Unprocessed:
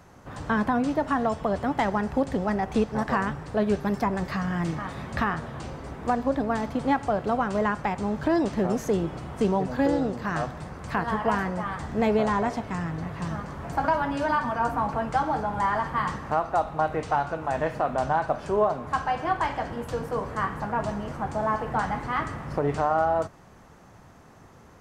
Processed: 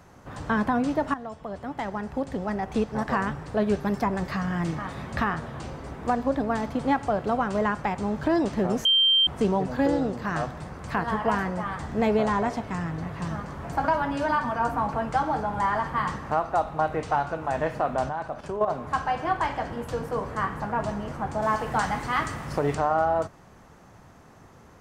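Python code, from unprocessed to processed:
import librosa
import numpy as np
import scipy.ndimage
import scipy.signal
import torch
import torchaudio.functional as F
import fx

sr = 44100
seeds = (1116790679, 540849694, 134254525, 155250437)

y = fx.level_steps(x, sr, step_db=10, at=(18.09, 18.68))
y = fx.high_shelf(y, sr, hz=2900.0, db=11.5, at=(21.42, 22.75))
y = fx.edit(y, sr, fx.fade_in_from(start_s=1.14, length_s=2.17, floor_db=-13.5),
    fx.bleep(start_s=8.85, length_s=0.42, hz=3150.0, db=-16.5), tone=tone)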